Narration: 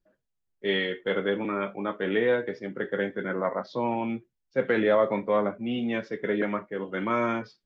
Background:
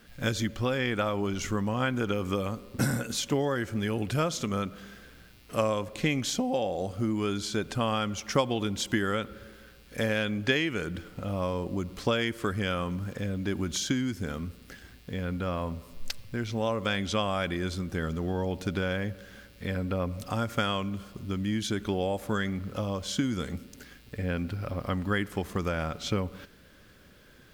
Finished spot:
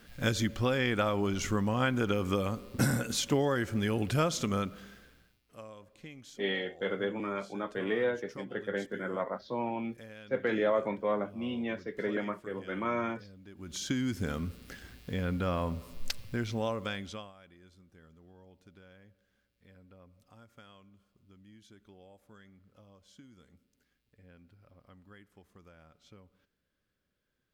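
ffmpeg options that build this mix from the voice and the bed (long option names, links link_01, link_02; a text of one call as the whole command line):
ffmpeg -i stem1.wav -i stem2.wav -filter_complex "[0:a]adelay=5750,volume=-6dB[link_01];[1:a]volume=20.5dB,afade=type=out:start_time=4.52:duration=0.89:silence=0.0944061,afade=type=in:start_time=13.56:duration=0.61:silence=0.0891251,afade=type=out:start_time=16.26:duration=1.07:silence=0.0446684[link_02];[link_01][link_02]amix=inputs=2:normalize=0" out.wav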